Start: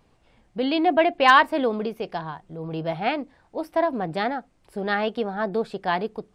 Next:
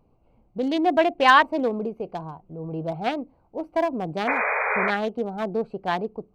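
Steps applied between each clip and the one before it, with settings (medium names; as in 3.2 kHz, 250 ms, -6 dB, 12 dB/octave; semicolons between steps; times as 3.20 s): local Wiener filter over 25 samples; painted sound noise, 4.27–4.91 s, 410–2500 Hz -24 dBFS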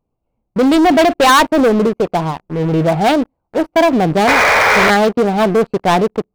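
waveshaping leveller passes 5; trim -1 dB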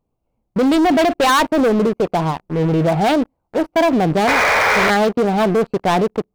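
peak limiter -11 dBFS, peak gain reduction 5 dB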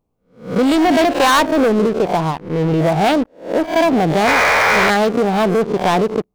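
reverse spectral sustain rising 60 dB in 0.39 s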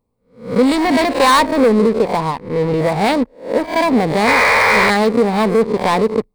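rippled EQ curve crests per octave 0.95, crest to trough 7 dB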